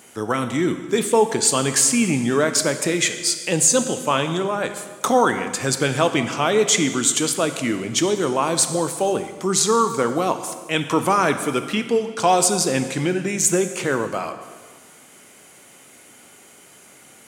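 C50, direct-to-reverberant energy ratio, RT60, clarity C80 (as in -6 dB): 10.0 dB, 8.0 dB, 1.6 s, 11.5 dB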